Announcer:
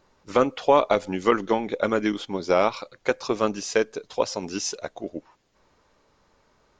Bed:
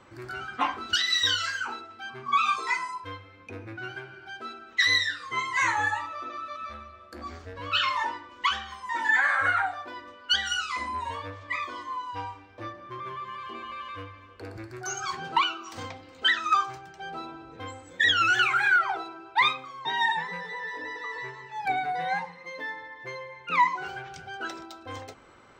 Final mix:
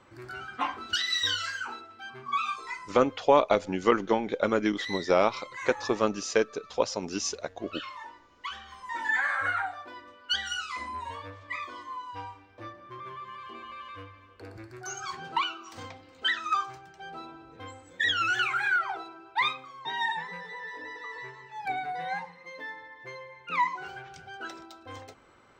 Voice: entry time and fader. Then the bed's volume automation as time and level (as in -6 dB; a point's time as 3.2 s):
2.60 s, -2.5 dB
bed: 2.21 s -3.5 dB
3.07 s -14.5 dB
8.37 s -14.5 dB
8.8 s -4.5 dB